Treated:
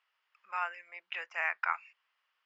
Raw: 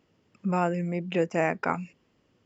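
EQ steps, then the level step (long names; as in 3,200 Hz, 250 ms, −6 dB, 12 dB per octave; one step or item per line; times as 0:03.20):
high-pass filter 1,100 Hz 24 dB per octave
dynamic equaliser 2,000 Hz, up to +3 dB, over −41 dBFS, Q 0.92
high-frequency loss of the air 220 metres
0.0 dB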